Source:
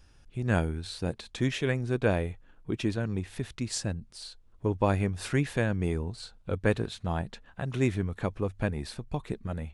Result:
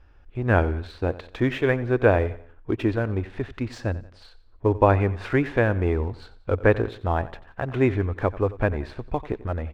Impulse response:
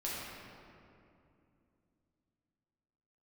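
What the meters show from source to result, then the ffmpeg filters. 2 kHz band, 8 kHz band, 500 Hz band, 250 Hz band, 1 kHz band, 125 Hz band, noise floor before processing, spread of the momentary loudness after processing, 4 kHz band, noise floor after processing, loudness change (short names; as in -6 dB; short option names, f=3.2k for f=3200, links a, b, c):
+7.0 dB, under -10 dB, +9.0 dB, +4.5 dB, +9.5 dB, +5.0 dB, -58 dBFS, 12 LU, -3.5 dB, -52 dBFS, +6.5 dB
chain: -filter_complex "[0:a]lowpass=1.9k,equalizer=f=170:w=1.9:g=-14,asplit=2[a][b];[b]aeval=exprs='sgn(val(0))*max(abs(val(0))-0.00316,0)':c=same,volume=-3.5dB[c];[a][c]amix=inputs=2:normalize=0,aecho=1:1:90|180|270:0.133|0.0547|0.0224,volume=5.5dB"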